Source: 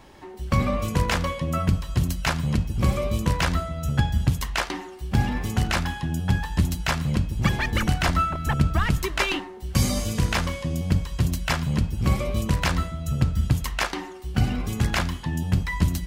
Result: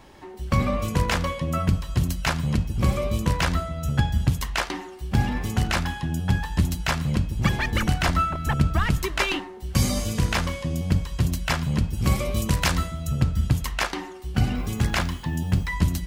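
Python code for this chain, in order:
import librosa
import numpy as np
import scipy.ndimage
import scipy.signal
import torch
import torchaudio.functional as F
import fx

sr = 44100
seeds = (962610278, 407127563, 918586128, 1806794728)

y = fx.high_shelf(x, sr, hz=4400.0, db=7.5, at=(11.93, 13.07))
y = fx.dmg_noise_colour(y, sr, seeds[0], colour='violet', level_db=-60.0, at=(14.55, 15.68), fade=0.02)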